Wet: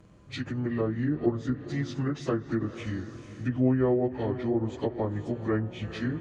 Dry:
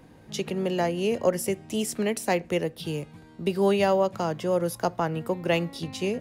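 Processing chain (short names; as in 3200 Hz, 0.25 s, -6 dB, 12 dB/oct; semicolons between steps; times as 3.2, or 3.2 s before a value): pitch shift by moving bins -7.5 st; diffused feedback echo 0.479 s, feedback 45%, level -13 dB; treble ducked by the level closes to 1200 Hz, closed at -21.5 dBFS; gain -1.5 dB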